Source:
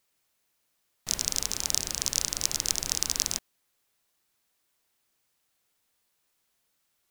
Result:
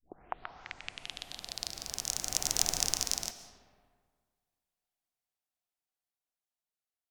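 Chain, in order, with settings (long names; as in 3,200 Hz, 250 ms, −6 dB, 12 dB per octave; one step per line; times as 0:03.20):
turntable start at the beginning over 2.17 s
source passing by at 0:02.67, 13 m/s, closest 4.3 metres
parametric band 730 Hz +10 dB 0.31 octaves
comb and all-pass reverb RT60 1.8 s, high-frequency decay 0.55×, pre-delay 95 ms, DRR 11 dB
level −1 dB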